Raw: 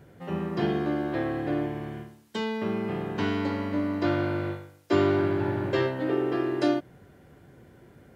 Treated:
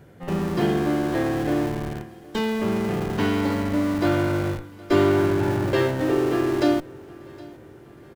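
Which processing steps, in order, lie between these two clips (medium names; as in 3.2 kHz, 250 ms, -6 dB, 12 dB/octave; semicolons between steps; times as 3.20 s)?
in parallel at -8 dB: Schmitt trigger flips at -32 dBFS; on the sum: feedback delay 766 ms, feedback 51%, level -22 dB; trim +3 dB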